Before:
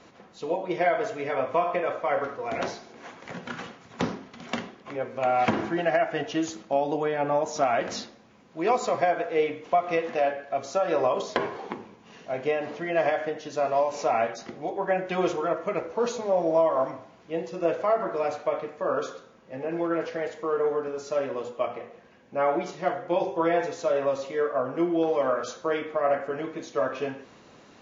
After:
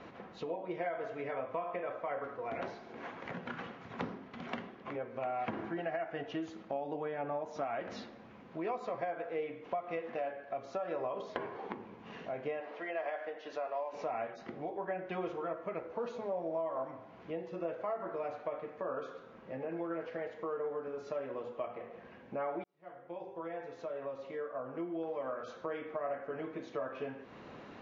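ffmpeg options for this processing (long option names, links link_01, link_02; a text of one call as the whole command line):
ffmpeg -i in.wav -filter_complex "[0:a]asettb=1/sr,asplit=3[link_01][link_02][link_03];[link_01]atrim=end=12.604[link_04];[link_02]atrim=start=12.6:end=13.93,asetpts=PTS-STARTPTS,afade=type=in:duration=0.004:curve=qsin,afade=type=out:start_time=1.326:duration=0.004:curve=qsin,highpass=480,lowpass=6500[link_05];[link_03]atrim=start=13.926[link_06];[link_04][link_05]acrossfade=duration=0.004:curve1=hsin:curve2=qsin[link_07];[link_07][link_06]acrossfade=duration=0.004:curve1=qsin:curve2=hsin,asplit=2[link_08][link_09];[link_08]atrim=end=22.64,asetpts=PTS-STARTPTS,afade=type=out:start_time=22.636:duration=0.004:curve=hsin[link_10];[link_09]atrim=start=22.64,asetpts=PTS-STARTPTS,afade=type=in:duration=3.6[link_11];[link_10][link_11]concat=n=2:v=0:a=1,lowpass=2700,acompressor=threshold=-45dB:ratio=2.5,volume=2.5dB" out.wav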